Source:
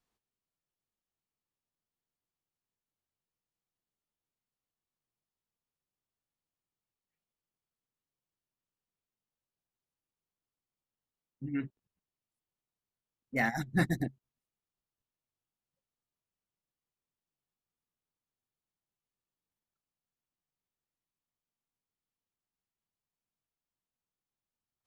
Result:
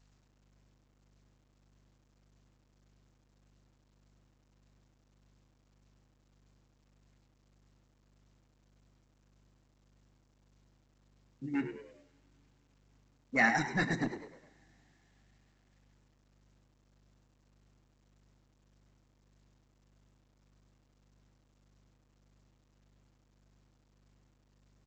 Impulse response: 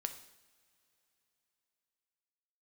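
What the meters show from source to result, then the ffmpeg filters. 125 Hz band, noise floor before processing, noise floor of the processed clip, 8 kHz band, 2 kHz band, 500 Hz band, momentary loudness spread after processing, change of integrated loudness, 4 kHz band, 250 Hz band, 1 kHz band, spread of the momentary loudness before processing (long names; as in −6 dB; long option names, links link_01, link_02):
−4.5 dB, below −85 dBFS, −70 dBFS, +3.0 dB, +4.5 dB, +1.0 dB, 19 LU, +1.0 dB, +3.5 dB, −1.0 dB, +4.0 dB, 11 LU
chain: -filter_complex "[0:a]highpass=190,aeval=exprs='val(0)+0.000251*(sin(2*PI*50*n/s)+sin(2*PI*2*50*n/s)/2+sin(2*PI*3*50*n/s)/3+sin(2*PI*4*50*n/s)/4+sin(2*PI*5*50*n/s)/5)':channel_layout=same,tremolo=f=1.7:d=0.4,acrossover=split=900[link_01][link_02];[link_01]volume=35.5dB,asoftclip=hard,volume=-35.5dB[link_03];[link_02]asuperstop=centerf=3300:order=20:qfactor=4.4[link_04];[link_03][link_04]amix=inputs=2:normalize=0,asplit=5[link_05][link_06][link_07][link_08][link_09];[link_06]adelay=102,afreqshift=80,volume=-11dB[link_10];[link_07]adelay=204,afreqshift=160,volume=-18.7dB[link_11];[link_08]adelay=306,afreqshift=240,volume=-26.5dB[link_12];[link_09]adelay=408,afreqshift=320,volume=-34.2dB[link_13];[link_05][link_10][link_11][link_12][link_13]amix=inputs=5:normalize=0,asplit=2[link_14][link_15];[1:a]atrim=start_sample=2205[link_16];[link_15][link_16]afir=irnorm=-1:irlink=0,volume=1.5dB[link_17];[link_14][link_17]amix=inputs=2:normalize=0" -ar 16000 -c:a pcm_alaw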